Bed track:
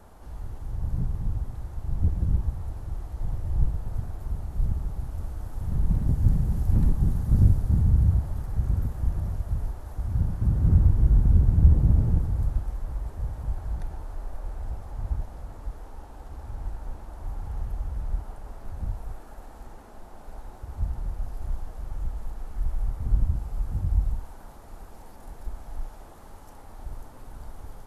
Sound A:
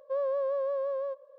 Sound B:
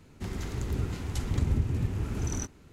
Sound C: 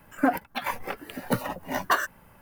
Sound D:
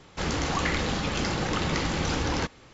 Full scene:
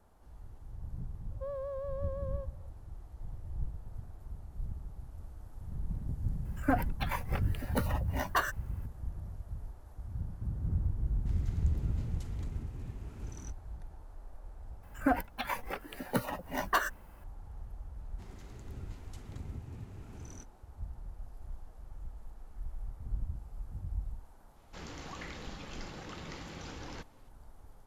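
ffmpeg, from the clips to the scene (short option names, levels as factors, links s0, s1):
-filter_complex "[3:a]asplit=2[s0][s1];[2:a]asplit=2[s2][s3];[0:a]volume=0.211[s4];[1:a]atrim=end=1.38,asetpts=PTS-STARTPTS,volume=0.335,afade=t=in:d=0.004:c=hsin,afade=t=out:st=1.376:d=0.004:c=hsin,adelay=1310[s5];[s0]atrim=end=2.41,asetpts=PTS-STARTPTS,volume=0.473,afade=t=in:d=0.004:c=hsin,afade=t=out:st=2.406:d=0.004:c=hsin,adelay=6450[s6];[s2]atrim=end=2.72,asetpts=PTS-STARTPTS,volume=0.178,afade=t=in:d=0.004:c=hsin,afade=t=out:st=2.716:d=0.004:c=hsin,adelay=11050[s7];[s1]atrim=end=2.41,asetpts=PTS-STARTPTS,volume=0.531,afade=t=in:d=0.004:c=hsin,afade=t=out:st=2.406:d=0.004:c=hsin,adelay=14830[s8];[s3]atrim=end=2.72,asetpts=PTS-STARTPTS,volume=0.158,afade=t=in:d=0.004:c=hsin,afade=t=out:st=2.716:d=0.004:c=hsin,adelay=17980[s9];[4:a]atrim=end=2.73,asetpts=PTS-STARTPTS,volume=0.133,afade=t=in:d=0.004:c=hsin,afade=t=out:st=2.726:d=0.004:c=hsin,adelay=24560[s10];[s4][s5][s6][s7][s8][s9][s10]amix=inputs=7:normalize=0"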